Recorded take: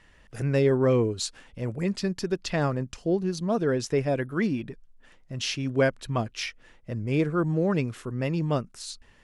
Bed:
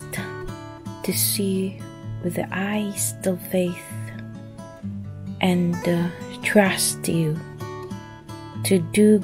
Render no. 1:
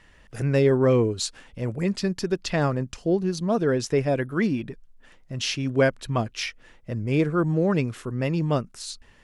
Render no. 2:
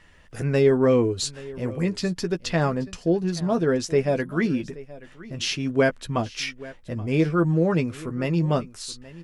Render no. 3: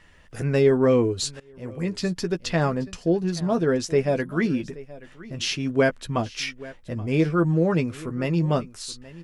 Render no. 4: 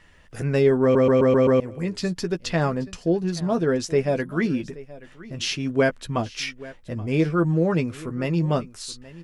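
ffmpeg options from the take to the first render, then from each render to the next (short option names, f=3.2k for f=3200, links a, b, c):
-af "volume=2.5dB"
-filter_complex "[0:a]asplit=2[a][b];[b]adelay=12,volume=-8dB[c];[a][c]amix=inputs=2:normalize=0,aecho=1:1:827:0.112"
-filter_complex "[0:a]asplit=2[a][b];[a]atrim=end=1.4,asetpts=PTS-STARTPTS,afade=t=out:st=1.396:d=0.004:c=hsin:silence=0.0841395[c];[b]atrim=start=1.4,asetpts=PTS-STARTPTS,afade=t=in:d=0.65:silence=0.0841395[d];[c][d]concat=n=2:v=0:a=1"
-filter_complex "[0:a]asplit=7[a][b][c][d][e][f][g];[a]atrim=end=0.952[h];[b]atrim=start=0.818:end=0.952[i];[c]atrim=start=0.818:end=0.952[j];[d]atrim=start=0.818:end=0.952[k];[e]atrim=start=0.818:end=0.952[l];[f]atrim=start=0.818:end=0.952[m];[g]atrim=start=1.598[n];[h][i]acrossfade=d=0.004:c1=hsin:c2=hsin[o];[o][j]acrossfade=d=0.004:c1=hsin:c2=hsin[p];[p][k]acrossfade=d=0.004:c1=hsin:c2=hsin[q];[q][l]acrossfade=d=0.004:c1=hsin:c2=hsin[r];[r][m]acrossfade=d=0.004:c1=hsin:c2=hsin[s];[s][n]acrossfade=d=0.004:c1=hsin:c2=hsin"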